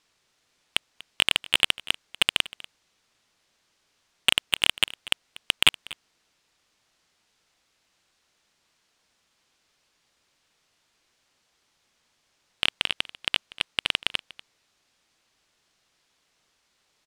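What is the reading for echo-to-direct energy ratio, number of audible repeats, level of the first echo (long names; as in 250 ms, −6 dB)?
−20.0 dB, 1, −20.0 dB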